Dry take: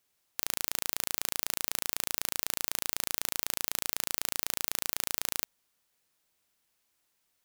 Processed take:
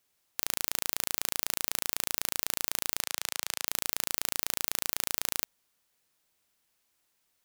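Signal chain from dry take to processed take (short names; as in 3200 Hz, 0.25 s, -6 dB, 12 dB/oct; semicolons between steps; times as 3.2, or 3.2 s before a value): 3.01–3.67 weighting filter A; gain +1 dB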